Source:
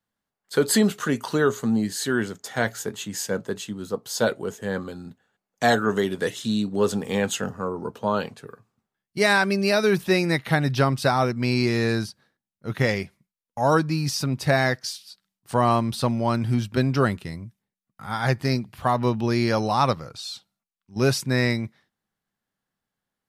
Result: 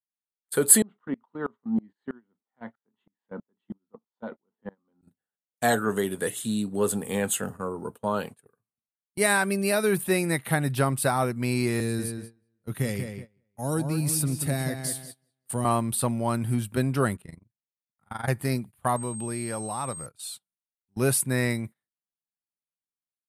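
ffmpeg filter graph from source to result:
-filter_complex "[0:a]asettb=1/sr,asplit=3[s0][s1][s2];[s0]atrim=end=0.824[s3];[s1]atrim=start=0.82:end=5.03,asetpts=PTS-STARTPTS,afade=t=in:d=0.004:c=qsin,afade=t=out:st=4.206:d=0.004:c=qsin,highpass=210,equalizer=f=230:t=q:w=4:g=7,equalizer=f=420:t=q:w=4:g=-6,equalizer=f=600:t=q:w=4:g=-4,equalizer=f=940:t=q:w=4:g=5,equalizer=f=1600:t=q:w=4:g=-8,equalizer=f=2500:t=q:w=4:g=-10,lowpass=f=2600:w=0.5412,lowpass=f=2600:w=1.3066,aeval=exprs='val(0)*pow(10,-28*if(lt(mod(-3.1*n/s,1),2*abs(-3.1)/1000),1-mod(-3.1*n/s,1)/(2*abs(-3.1)/1000),(mod(-3.1*n/s,1)-2*abs(-3.1)/1000)/(1-2*abs(-3.1)/1000))/20)':c=same[s4];[s2]atrim=start=5.026[s5];[s3][s4]acrossfade=d=0.004:c1=hsin:c2=qsin[s6];[s6][s5]acrossfade=d=0.004:c1=qsin:c2=hsin,asettb=1/sr,asplit=3[s7][s8][s9];[s7]atrim=end=11.804[s10];[s8]atrim=start=11.8:end=15.65,asetpts=PTS-STARTPTS,afade=t=in:d=0.004:c=qsin,afade=t=out:st=3.846:d=0.004:c=qsin,acrossover=split=420|3000[s11][s12][s13];[s12]acompressor=threshold=0.00708:ratio=2:attack=3.2:release=140:knee=2.83:detection=peak[s14];[s11][s14][s13]amix=inputs=3:normalize=0,asplit=2[s15][s16];[s16]adelay=187,lowpass=f=3500:p=1,volume=0.473,asplit=2[s17][s18];[s18]adelay=187,lowpass=f=3500:p=1,volume=0.37,asplit=2[s19][s20];[s20]adelay=187,lowpass=f=3500:p=1,volume=0.37,asplit=2[s21][s22];[s22]adelay=187,lowpass=f=3500:p=1,volume=0.37[s23];[s15][s17][s19][s21][s23]amix=inputs=5:normalize=0,atrim=end_sample=169785[s24];[s9]atrim=start=15.646[s25];[s10][s24]acrossfade=d=0.004:c1=hsin:c2=qsin[s26];[s26][s25]acrossfade=d=0.004:c1=qsin:c2=hsin,asettb=1/sr,asplit=3[s27][s28][s29];[s27]atrim=end=17.164[s30];[s28]atrim=start=17.16:end=18.28,asetpts=PTS-STARTPTS,afade=t=in:d=0.004:c=qsin,afade=t=out:st=1.116:d=0.004:c=qsin,lowpass=f=3400:p=1,tremolo=f=23:d=0.857[s31];[s29]atrim=start=18.276[s32];[s30][s31]acrossfade=d=0.004:c1=hsin:c2=qsin[s33];[s33][s32]acrossfade=d=0.004:c1=qsin:c2=hsin,asettb=1/sr,asplit=3[s34][s35][s36];[s34]atrim=end=18.964[s37];[s35]atrim=start=18.96:end=20.06,asetpts=PTS-STARTPTS,afade=t=in:d=0.004:c=qsin,afade=t=out:st=1.096:d=0.004:c=qsin,acompressor=threshold=0.0316:ratio=2:attack=3.2:release=140:knee=1:detection=peak,aeval=exprs='val(0)+0.00501*sin(2*PI*8400*n/s)':c=same[s38];[s36]atrim=start=20.056[s39];[s37][s38]acrossfade=d=0.004:c1=hsin:c2=qsin[s40];[s40][s39]acrossfade=d=0.004:c1=qsin:c2=hsin,highshelf=f=7300:t=q:w=3:g=10,agate=range=0.0794:threshold=0.0178:ratio=16:detection=peak,volume=0.668"

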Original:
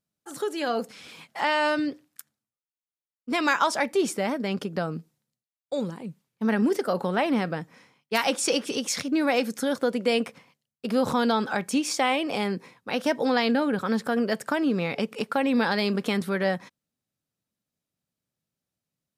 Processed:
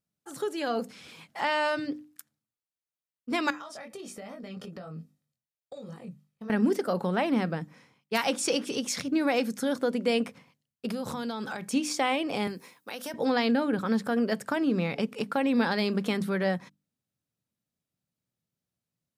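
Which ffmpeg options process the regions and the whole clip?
-filter_complex "[0:a]asettb=1/sr,asplit=3[s0][s1][s2];[s0]atrim=end=3.504[s3];[s1]atrim=start=3.5:end=6.5,asetpts=PTS-STARTPTS,afade=t=in:d=0.004:c=qsin,afade=t=out:st=2.996:d=0.004:c=qsin,aecho=1:1:1.6:0.4,atrim=end_sample=132300,flanger=delay=19.5:depth=2.6:speed=1.3,acompressor=threshold=0.0178:ratio=16:attack=3.2:release=140:knee=1:detection=peak[s4];[s2]atrim=start=6.496[s5];[s3][s4]acrossfade=d=0.004:c1=hsin:c2=qsin[s6];[s6][s5]acrossfade=d=0.004:c1=qsin:c2=hsin,asettb=1/sr,asplit=3[s7][s8][s9];[s7]atrim=end=10.894[s10];[s8]atrim=start=10.89:end=11.65,asetpts=PTS-STARTPTS,afade=t=in:d=0.004:c=qsin,afade=t=out:st=0.756:d=0.004:c=qsin,highshelf=f=4000:g=7,acompressor=threshold=0.0398:ratio=6:attack=3.2:release=140:knee=1:detection=peak[s11];[s9]atrim=start=11.646[s12];[s10][s11]acrossfade=d=0.004:c1=hsin:c2=qsin[s13];[s13][s12]acrossfade=d=0.004:c1=qsin:c2=hsin,asettb=1/sr,asplit=3[s14][s15][s16];[s14]atrim=end=12.474[s17];[s15]atrim=start=12.47:end=13.14,asetpts=PTS-STARTPTS,afade=t=in:d=0.004:c=qsin,afade=t=out:st=0.666:d=0.004:c=qsin,highpass=170,aemphasis=mode=production:type=bsi,acompressor=threshold=0.0224:ratio=2.5:attack=3.2:release=140:knee=1:detection=peak[s18];[s16]atrim=start=13.136[s19];[s17][s18]acrossfade=d=0.004:c1=hsin:c2=qsin[s20];[s20][s19]acrossfade=d=0.004:c1=qsin:c2=hsin,equalizer=f=120:w=0.59:g=5.5,bandreject=f=50:t=h:w=6,bandreject=f=100:t=h:w=6,bandreject=f=150:t=h:w=6,bandreject=f=200:t=h:w=6,bandreject=f=250:t=h:w=6,bandreject=f=300:t=h:w=6,volume=0.668"

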